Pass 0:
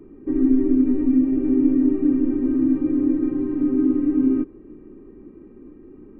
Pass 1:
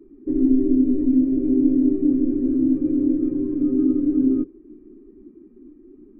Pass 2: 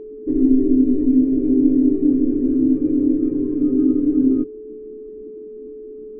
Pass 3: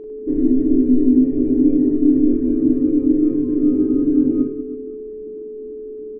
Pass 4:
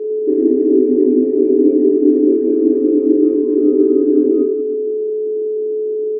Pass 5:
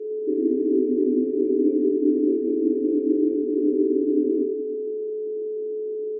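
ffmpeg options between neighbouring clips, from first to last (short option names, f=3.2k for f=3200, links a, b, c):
-af "afftdn=nr=14:nf=-33"
-af "aeval=exprs='val(0)+0.0178*sin(2*PI*430*n/s)':c=same,volume=2.5dB"
-af "aecho=1:1:40|100|190|325|527.5:0.631|0.398|0.251|0.158|0.1"
-af "highpass=f=400:t=q:w=4.9"
-af "asuperstop=centerf=1000:order=4:qfactor=0.66,volume=-8dB"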